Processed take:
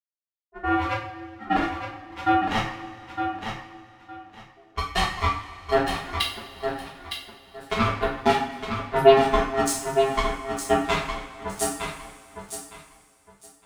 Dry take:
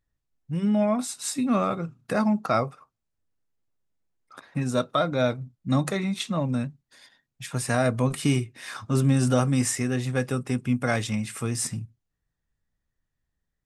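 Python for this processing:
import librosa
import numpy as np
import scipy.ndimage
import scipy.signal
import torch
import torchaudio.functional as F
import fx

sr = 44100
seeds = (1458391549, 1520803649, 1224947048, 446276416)

p1 = fx.bin_expand(x, sr, power=3.0)
p2 = fx.lowpass(p1, sr, hz=1500.0, slope=24, at=(0.88, 1.4))
p3 = fx.rider(p2, sr, range_db=3, speed_s=0.5)
p4 = p2 + F.gain(torch.from_numpy(p3), 1.5).numpy()
p5 = fx.backlash(p4, sr, play_db=-34.0)
p6 = p5 * np.sin(2.0 * np.pi * 540.0 * np.arange(len(p5)) / sr)
p7 = fx.cheby_harmonics(p6, sr, harmonics=(7,), levels_db=(-16,), full_scale_db=-10.0)
p8 = p7 + fx.echo_feedback(p7, sr, ms=911, feedback_pct=21, wet_db=-7, dry=0)
y = fx.rev_double_slope(p8, sr, seeds[0], early_s=0.47, late_s=2.7, knee_db=-18, drr_db=-5.5)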